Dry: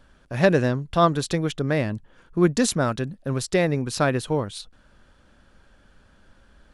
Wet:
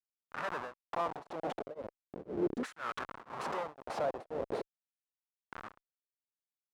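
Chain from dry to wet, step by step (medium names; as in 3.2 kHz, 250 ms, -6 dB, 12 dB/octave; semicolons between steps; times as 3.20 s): wind noise 290 Hz -29 dBFS; high-pass 49 Hz 6 dB/octave; dynamic bell 160 Hz, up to +4 dB, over -31 dBFS, Q 2.5; waveshaping leveller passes 1; compression 8:1, threshold -14 dBFS, peak gain reduction 5.5 dB; RIAA curve recording; Schmitt trigger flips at -23 dBFS; LFO band-pass saw down 0.38 Hz 340–1600 Hz; tremolo of two beating tones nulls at 2 Hz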